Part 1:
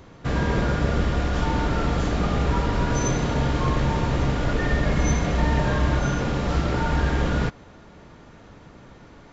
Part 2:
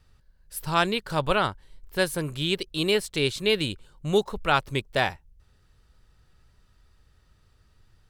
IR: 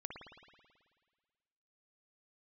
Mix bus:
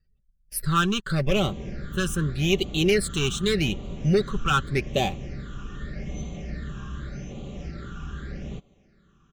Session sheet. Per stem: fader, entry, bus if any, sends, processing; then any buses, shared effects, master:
-13.0 dB, 1.10 s, no send, dry
-5.0 dB, 0.00 s, no send, spectral gate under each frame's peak -30 dB strong; sample leveller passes 3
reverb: off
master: comb 5.2 ms, depth 39%; phaser stages 8, 0.84 Hz, lowest notch 600–1600 Hz; Butterworth band-stop 920 Hz, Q 6.2

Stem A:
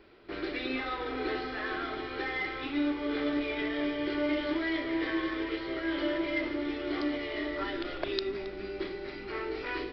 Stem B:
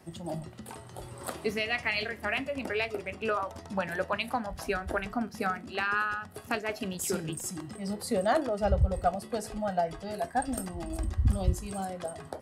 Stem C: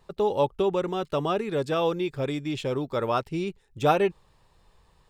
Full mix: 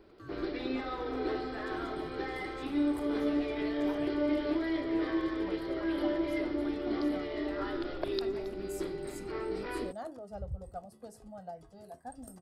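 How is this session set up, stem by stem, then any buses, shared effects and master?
+1.0 dB, 0.00 s, no send, dry
-14.0 dB, 1.70 s, no send, dry
-13.0 dB, 0.00 s, no send, Bessel high-pass 940 Hz; ring modulator with a swept carrier 450 Hz, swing 75%, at 0.41 Hz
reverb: off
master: bell 2400 Hz -10.5 dB 1.8 oct

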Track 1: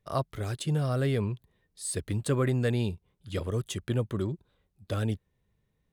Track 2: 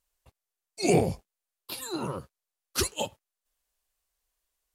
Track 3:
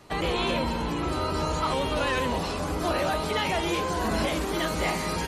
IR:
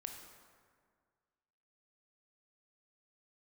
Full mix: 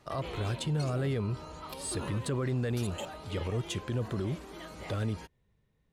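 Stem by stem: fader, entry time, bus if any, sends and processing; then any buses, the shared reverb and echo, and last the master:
+1.5 dB, 0.00 s, no send, high shelf 9000 Hz -11.5 dB
-2.5 dB, 0.00 s, no send, limiter -23.5 dBFS, peak gain reduction 12 dB; level quantiser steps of 18 dB
-9.5 dB, 0.00 s, no send, high shelf 11000 Hz -5 dB; auto duck -8 dB, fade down 0.60 s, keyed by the first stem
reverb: off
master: limiter -24.5 dBFS, peak gain reduction 10 dB

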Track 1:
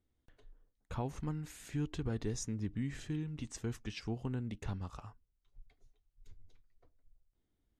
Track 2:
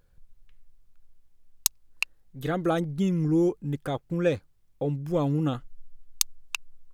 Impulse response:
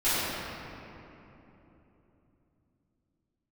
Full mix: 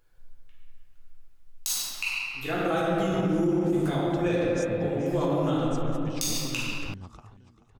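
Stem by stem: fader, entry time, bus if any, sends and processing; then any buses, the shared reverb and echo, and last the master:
-0.5 dB, 2.20 s, no send, echo send -15.5 dB, dry
-5.0 dB, 0.00 s, send -3.5 dB, no echo send, low shelf 410 Hz -9 dB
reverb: on, RT60 3.3 s, pre-delay 3 ms
echo: feedback echo 0.433 s, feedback 58%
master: limiter -17 dBFS, peak gain reduction 10.5 dB

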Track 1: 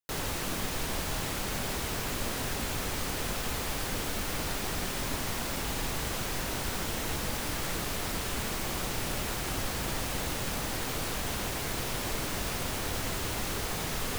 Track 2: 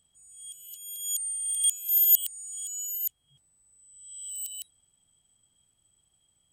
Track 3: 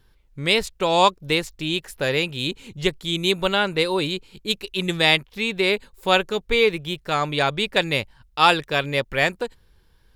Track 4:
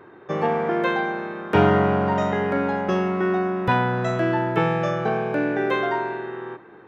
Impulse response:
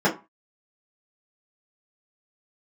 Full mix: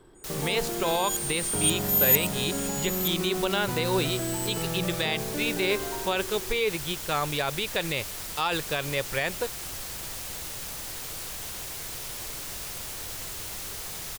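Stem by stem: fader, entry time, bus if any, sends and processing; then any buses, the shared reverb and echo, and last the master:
-9.0 dB, 0.15 s, bus A, no send, high shelf 3400 Hz +11.5 dB
-1.0 dB, 0.00 s, no bus, no send, dry
-3.0 dB, 0.00 s, bus A, no send, dry
-15.5 dB, 0.00 s, no bus, no send, limiter -14.5 dBFS, peak gain reduction 8.5 dB; low shelf 500 Hz +10.5 dB
bus A: 0.0 dB, bell 240 Hz -5.5 dB 0.58 oct; limiter -16 dBFS, peak gain reduction 11.5 dB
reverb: off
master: dry

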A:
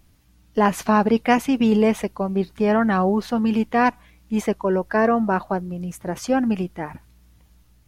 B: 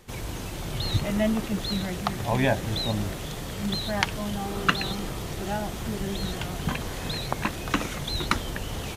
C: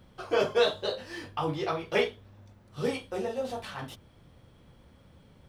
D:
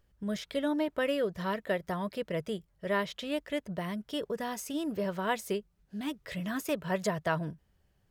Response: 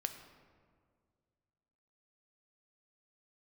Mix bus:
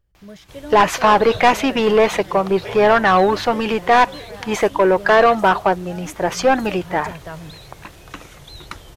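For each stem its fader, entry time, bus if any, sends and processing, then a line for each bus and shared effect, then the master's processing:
+2.0 dB, 0.15 s, no send, bell 9800 Hz -6 dB 0.45 oct; overdrive pedal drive 19 dB, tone 3000 Hz, clips at -4.5 dBFS
-8.5 dB, 0.40 s, no send, dry
-5.5 dB, 0.70 s, no send, dry
-5.5 dB, 0.00 s, no send, low shelf 360 Hz +8 dB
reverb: off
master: bell 230 Hz -9.5 dB 0.5 oct

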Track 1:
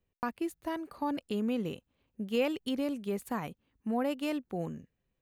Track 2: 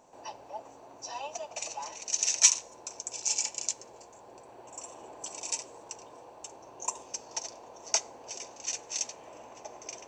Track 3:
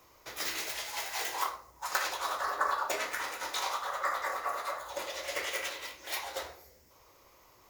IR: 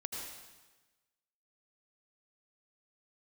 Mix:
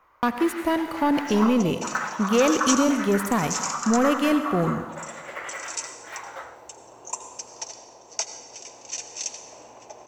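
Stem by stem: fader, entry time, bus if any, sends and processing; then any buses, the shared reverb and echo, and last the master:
+3.0 dB, 0.00 s, send -5 dB, sample leveller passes 2
-12.0 dB, 0.25 s, send -5 dB, AGC gain up to 11 dB
-8.5 dB, 0.00 s, send -10.5 dB, EQ curve 380 Hz 0 dB, 1400 Hz +14 dB, 5100 Hz -11 dB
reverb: on, RT60 1.2 s, pre-delay 73 ms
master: dry

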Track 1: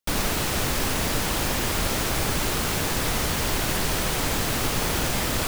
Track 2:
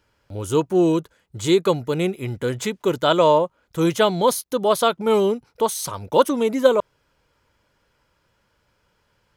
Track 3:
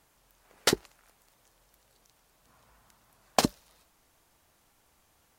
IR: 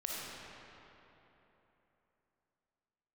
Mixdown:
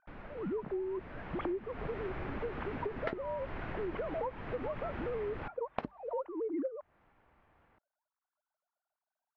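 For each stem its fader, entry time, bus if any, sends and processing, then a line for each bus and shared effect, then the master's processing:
1 s -22.5 dB -> 1.48 s -13 dB, 0.00 s, no send, dry
-11.5 dB, 0.00 s, no send, sine-wave speech; LPF 1000 Hz 12 dB/oct; backwards sustainer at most 91 dB/s
+2.0 dB, 2.40 s, no send, dry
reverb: off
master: LPF 2200 Hz 24 dB/oct; compressor 16:1, threshold -33 dBFS, peak gain reduction 18.5 dB

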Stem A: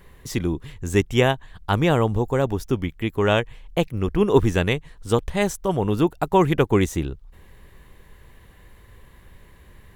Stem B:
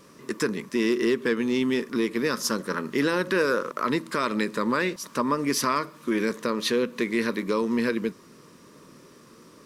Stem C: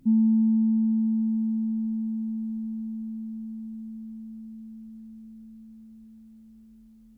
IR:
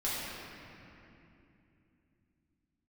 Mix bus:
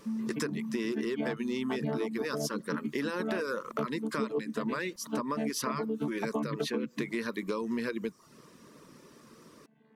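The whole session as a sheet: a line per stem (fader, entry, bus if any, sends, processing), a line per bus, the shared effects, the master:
-4.0 dB, 0.00 s, no send, chord vocoder bare fifth, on D3; Chebyshev band-pass 240–4300 Hz, order 2
-3.0 dB, 0.00 s, no send, dry
-6.5 dB, 0.00 s, no send, low shelf 320 Hz -8.5 dB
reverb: off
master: reverb removal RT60 0.52 s; compressor 6:1, threshold -29 dBFS, peak gain reduction 13.5 dB

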